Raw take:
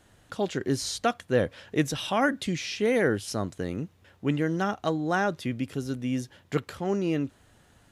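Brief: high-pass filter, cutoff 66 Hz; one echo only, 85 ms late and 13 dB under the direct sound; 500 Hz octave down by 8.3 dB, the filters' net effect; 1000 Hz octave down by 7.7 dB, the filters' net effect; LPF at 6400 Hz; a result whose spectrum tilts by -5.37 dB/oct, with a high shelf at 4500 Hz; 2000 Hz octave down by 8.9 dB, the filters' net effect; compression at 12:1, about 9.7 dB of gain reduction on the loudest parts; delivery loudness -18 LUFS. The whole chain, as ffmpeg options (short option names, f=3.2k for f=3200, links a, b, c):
-af "highpass=66,lowpass=6.4k,equalizer=f=500:t=o:g=-9,equalizer=f=1k:t=o:g=-4.5,equalizer=f=2k:t=o:g=-9,highshelf=f=4.5k:g=-4.5,acompressor=threshold=-33dB:ratio=12,aecho=1:1:85:0.224,volume=21dB"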